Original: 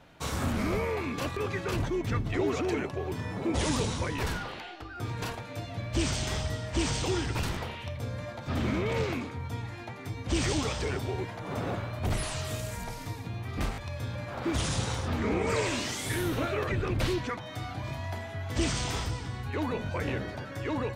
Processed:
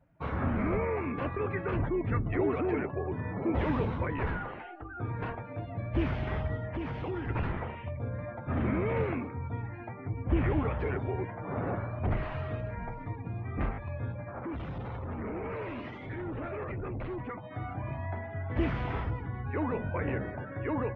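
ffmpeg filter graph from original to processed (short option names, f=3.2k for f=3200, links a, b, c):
-filter_complex "[0:a]asettb=1/sr,asplit=3[a][b][c];[a]atrim=end=6.674[d];[b]atrim=start=6.67:end=7.28,asetpts=PTS-STARTPTS,afade=t=in:d=0.004:c=qsin,afade=t=out:st=0.606:d=0.004:c=qsin,highpass=67,acompressor=threshold=-31dB:ratio=3:attack=3.2:release=140:knee=1:detection=peak[e];[c]atrim=start=7.276[f];[d][e]acrossfade=d=0.004:c1=hsin:c2=qsin[g];[g][f]acrossfade=d=0.004:c1=qsin:c2=hsin,asettb=1/sr,asplit=3[h][i][j];[h]atrim=end=9.944[k];[i]atrim=start=9.94:end=10.79,asetpts=PTS-STARTPTS,afade=t=in:d=0.004:c=qsin,afade=t=out:st=0.846:d=0.004:c=qsin,lowpass=2.7k,lowshelf=f=120:g=4.5[l];[j]atrim=start=10.786[m];[k][l]acrossfade=d=0.004:c1=hsin:c2=qsin[n];[n][m]acrossfade=d=0.004:c1=qsin:c2=hsin,asettb=1/sr,asplit=3[o][p][q];[o]atrim=end=14.124[r];[p]atrim=start=14.12:end=17.51,asetpts=PTS-STARTPTS,afade=t=in:d=0.004:c=qsin,afade=t=out:st=3.386:d=0.004:c=qsin,tremolo=f=12:d=0.39,adynamicequalizer=threshold=0.00282:dfrequency=1600:dqfactor=3.7:tfrequency=1600:tqfactor=3.7:attack=5:release=100:ratio=0.375:range=2:mode=cutabove:tftype=bell,asoftclip=type=hard:threshold=-34dB[s];[q]atrim=start=17.506[t];[r][s]acrossfade=d=0.004:c1=hsin:c2=qsin[u];[u][t]acrossfade=d=0.004:c1=qsin:c2=hsin,afftdn=nr=18:nf=-45,lowpass=f=2.2k:w=0.5412,lowpass=f=2.2k:w=1.3066"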